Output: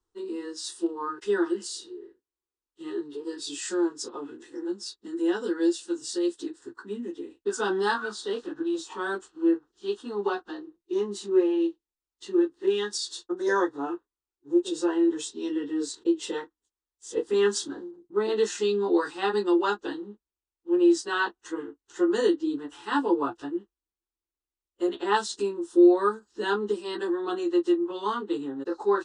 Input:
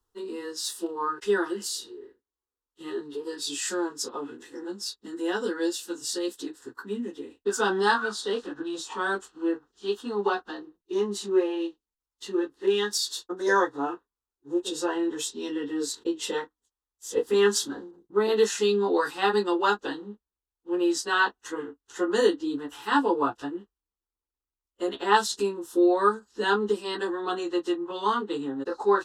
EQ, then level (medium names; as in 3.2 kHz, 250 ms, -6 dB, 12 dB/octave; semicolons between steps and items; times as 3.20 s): brick-wall FIR low-pass 10 kHz; peaking EQ 340 Hz +9.5 dB 0.29 oct; -4.0 dB